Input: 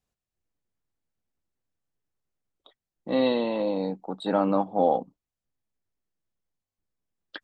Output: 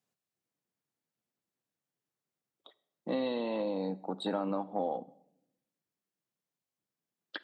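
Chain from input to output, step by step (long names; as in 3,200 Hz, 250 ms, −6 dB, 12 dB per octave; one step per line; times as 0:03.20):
high-pass filter 130 Hz 24 dB per octave
downward compressor 5 to 1, threshold −29 dBFS, peak gain reduction 11.5 dB
on a send: convolution reverb RT60 0.80 s, pre-delay 38 ms, DRR 19 dB
on the sum: level −1 dB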